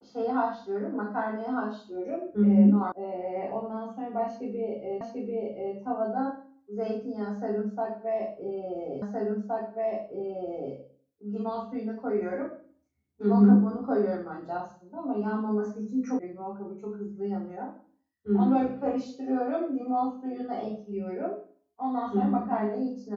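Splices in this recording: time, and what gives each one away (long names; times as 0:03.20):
0:02.92: cut off before it has died away
0:05.01: the same again, the last 0.74 s
0:09.02: the same again, the last 1.72 s
0:16.19: cut off before it has died away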